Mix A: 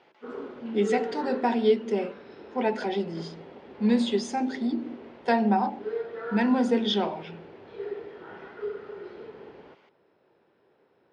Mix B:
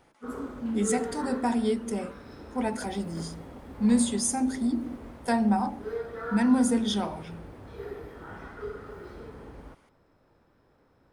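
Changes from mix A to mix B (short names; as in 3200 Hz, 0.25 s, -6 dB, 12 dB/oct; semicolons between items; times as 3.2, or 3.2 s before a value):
speech -4.0 dB; master: remove speaker cabinet 220–4500 Hz, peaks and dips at 270 Hz -6 dB, 390 Hz +7 dB, 1200 Hz -5 dB, 2800 Hz +4 dB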